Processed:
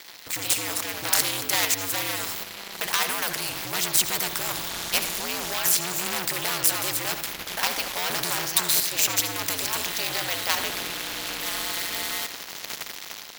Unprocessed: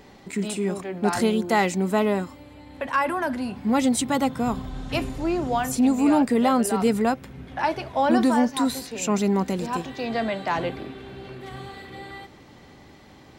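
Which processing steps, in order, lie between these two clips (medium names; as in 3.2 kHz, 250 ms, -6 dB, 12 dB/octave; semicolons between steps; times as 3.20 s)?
hum notches 60/120/180/240 Hz; waveshaping leveller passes 3; peaking EQ 8.7 kHz -8.5 dB 0.77 oct; level rider gain up to 11.5 dB; differentiator; in parallel at +2 dB: level held to a coarse grid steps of 23 dB; on the sum: ring modulator 90 Hz; on a send at -15 dB: reverberation RT60 0.40 s, pre-delay 68 ms; on the sum: spectrum-flattening compressor 2:1; trim -1.5 dB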